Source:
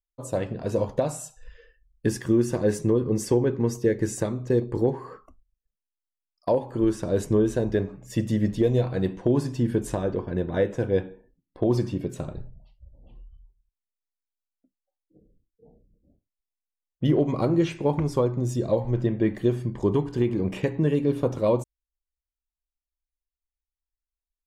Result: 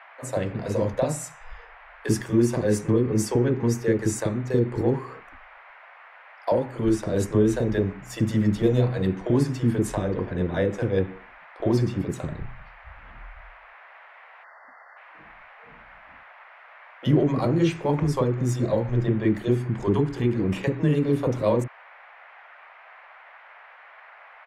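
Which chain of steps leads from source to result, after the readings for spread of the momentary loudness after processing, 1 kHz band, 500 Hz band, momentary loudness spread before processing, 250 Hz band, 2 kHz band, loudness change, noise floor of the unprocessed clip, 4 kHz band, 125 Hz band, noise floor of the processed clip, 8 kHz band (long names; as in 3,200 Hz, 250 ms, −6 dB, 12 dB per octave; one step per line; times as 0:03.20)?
9 LU, +2.5 dB, −0.5 dB, 7 LU, +1.5 dB, +4.5 dB, +1.0 dB, below −85 dBFS, +2.5 dB, +2.5 dB, −49 dBFS, +2.5 dB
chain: multiband delay without the direct sound highs, lows 40 ms, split 480 Hz
noise in a band 610–2,200 Hz −51 dBFS
time-frequency box erased 0:14.44–0:14.97, 2,100–4,300 Hz
level +2.5 dB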